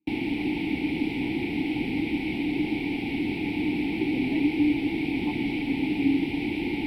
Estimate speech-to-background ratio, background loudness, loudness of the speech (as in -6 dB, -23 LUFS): -4.0 dB, -28.0 LUFS, -32.0 LUFS